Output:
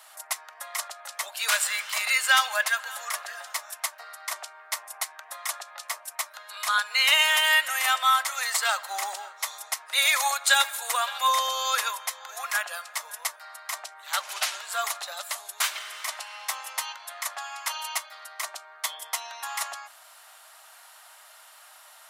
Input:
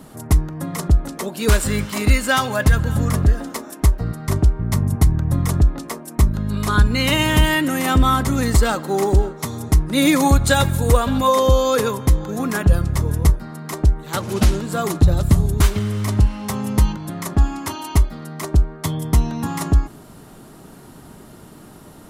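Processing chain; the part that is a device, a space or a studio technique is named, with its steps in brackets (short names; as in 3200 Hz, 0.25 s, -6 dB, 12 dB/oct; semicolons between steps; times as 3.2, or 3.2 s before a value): filter by subtraction (in parallel: LPF 2300 Hz 12 dB/oct + phase invert); on the sum: elliptic high-pass 640 Hz, stop band 70 dB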